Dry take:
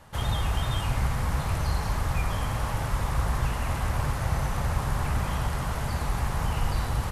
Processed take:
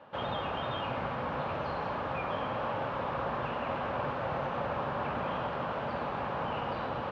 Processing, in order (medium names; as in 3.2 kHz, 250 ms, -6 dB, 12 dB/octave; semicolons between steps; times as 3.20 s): cabinet simulation 250–3000 Hz, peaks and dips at 250 Hz +3 dB, 550 Hz +7 dB, 2 kHz -8 dB